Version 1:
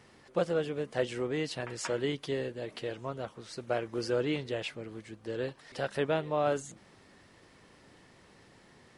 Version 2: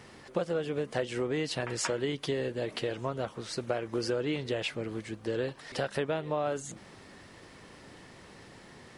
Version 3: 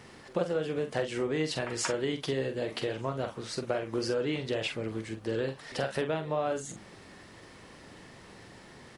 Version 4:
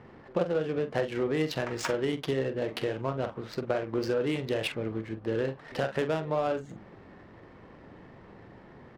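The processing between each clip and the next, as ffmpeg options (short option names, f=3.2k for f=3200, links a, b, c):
-af "acompressor=threshold=-35dB:ratio=5,volume=7dB"
-filter_complex "[0:a]asplit=2[a][b];[b]adelay=45,volume=-8dB[c];[a][c]amix=inputs=2:normalize=0"
-af "adynamicsmooth=sensitivity=6.5:basefreq=1.4k,volume=2dB"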